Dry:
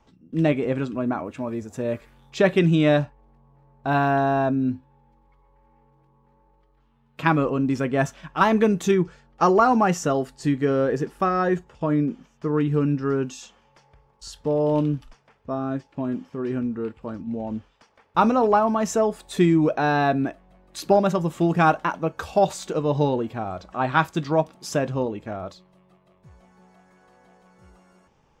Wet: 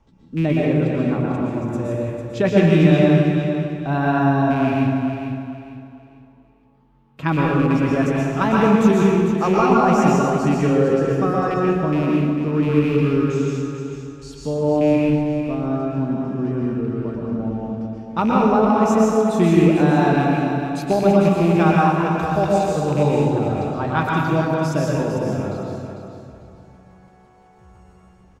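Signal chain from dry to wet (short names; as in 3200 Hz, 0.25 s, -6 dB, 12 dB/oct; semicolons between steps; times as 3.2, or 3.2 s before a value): rattling part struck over -24 dBFS, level -21 dBFS; low shelf 270 Hz +9.5 dB; on a send: feedback echo 0.449 s, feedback 31%, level -8 dB; on the sum: plate-style reverb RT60 1.4 s, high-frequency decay 0.75×, pre-delay 0.105 s, DRR -3.5 dB; gain -4.5 dB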